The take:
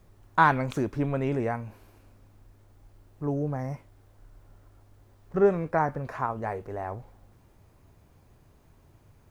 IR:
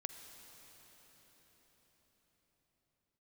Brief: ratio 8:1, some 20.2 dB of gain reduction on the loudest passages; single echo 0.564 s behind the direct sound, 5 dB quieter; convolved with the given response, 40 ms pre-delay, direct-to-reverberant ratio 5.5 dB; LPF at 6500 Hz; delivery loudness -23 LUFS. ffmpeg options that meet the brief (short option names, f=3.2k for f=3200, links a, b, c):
-filter_complex "[0:a]lowpass=6.5k,acompressor=threshold=-37dB:ratio=8,aecho=1:1:564:0.562,asplit=2[a][b];[1:a]atrim=start_sample=2205,adelay=40[c];[b][c]afir=irnorm=-1:irlink=0,volume=-3dB[d];[a][d]amix=inputs=2:normalize=0,volume=18dB"